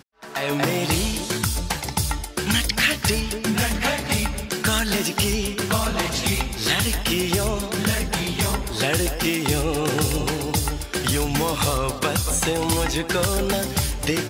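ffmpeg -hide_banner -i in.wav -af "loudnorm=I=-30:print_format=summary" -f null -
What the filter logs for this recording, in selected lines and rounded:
Input Integrated:    -22.4 LUFS
Input True Peak:      -6.5 dBTP
Input LRA:             0.8 LU
Input Threshold:     -32.4 LUFS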